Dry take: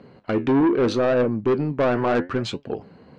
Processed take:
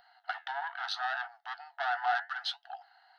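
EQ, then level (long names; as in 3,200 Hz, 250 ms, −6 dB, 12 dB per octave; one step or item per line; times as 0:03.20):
linear-phase brick-wall high-pass 680 Hz
phaser with its sweep stopped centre 1,600 Hz, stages 8
−1.0 dB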